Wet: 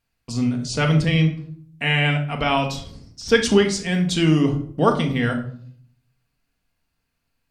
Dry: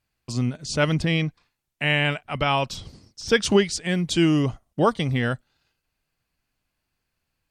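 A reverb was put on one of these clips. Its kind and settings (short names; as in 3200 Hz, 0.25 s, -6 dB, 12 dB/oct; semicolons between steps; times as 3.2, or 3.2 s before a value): shoebox room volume 720 m³, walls furnished, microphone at 1.7 m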